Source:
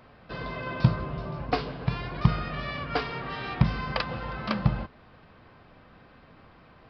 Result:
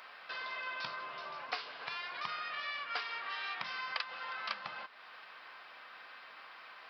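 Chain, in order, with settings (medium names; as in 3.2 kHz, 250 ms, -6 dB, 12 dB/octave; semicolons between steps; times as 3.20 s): high-pass 1.3 kHz 12 dB/octave; compression 2:1, threshold -55 dBFS, peak gain reduction 15.5 dB; trim +9 dB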